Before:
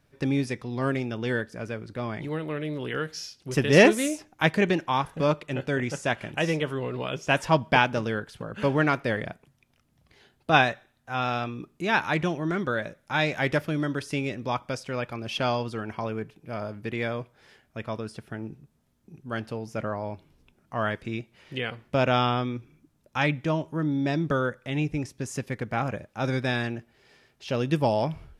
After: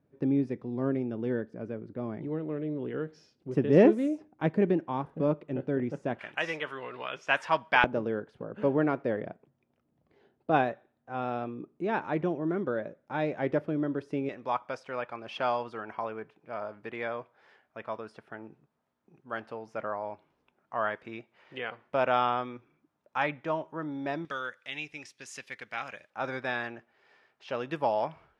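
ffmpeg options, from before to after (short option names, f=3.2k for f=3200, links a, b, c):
-af "asetnsamples=n=441:p=0,asendcmd='6.19 bandpass f 1500;7.84 bandpass f 400;14.29 bandpass f 960;24.25 bandpass f 2900;26.1 bandpass f 1100',bandpass=f=300:t=q:w=0.91:csg=0"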